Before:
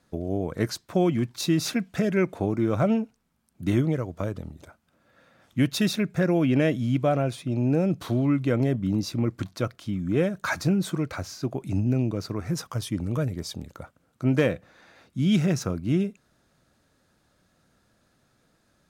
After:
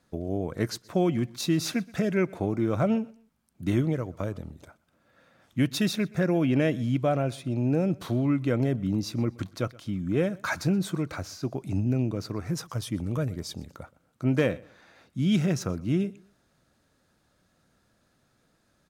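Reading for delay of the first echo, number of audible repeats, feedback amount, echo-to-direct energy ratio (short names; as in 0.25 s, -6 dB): 0.124 s, 2, 29%, -23.0 dB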